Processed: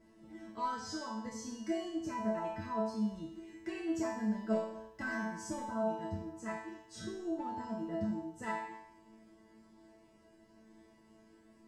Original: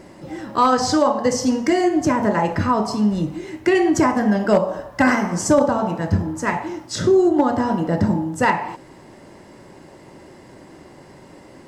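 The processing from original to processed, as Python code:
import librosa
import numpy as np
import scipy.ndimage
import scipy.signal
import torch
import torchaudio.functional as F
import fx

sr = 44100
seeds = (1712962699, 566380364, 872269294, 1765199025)

y = fx.peak_eq(x, sr, hz=64.0, db=13.0, octaves=2.9)
y = fx.resonator_bank(y, sr, root=57, chord='fifth', decay_s=0.75)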